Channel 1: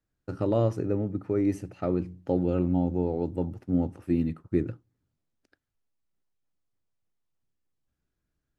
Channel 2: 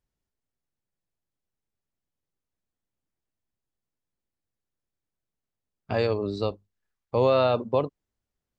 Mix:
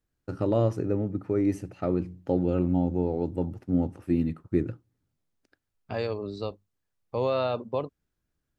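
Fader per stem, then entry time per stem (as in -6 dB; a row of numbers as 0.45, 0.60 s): +0.5, -5.5 dB; 0.00, 0.00 s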